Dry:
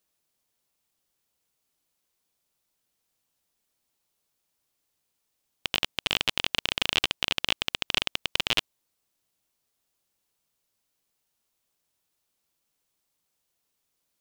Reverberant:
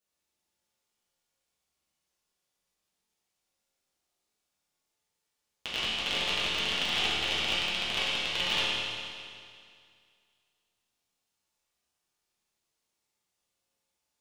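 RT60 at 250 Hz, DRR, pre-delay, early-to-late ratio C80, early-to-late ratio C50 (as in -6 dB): 2.2 s, -10.0 dB, 6 ms, -1.0 dB, -3.0 dB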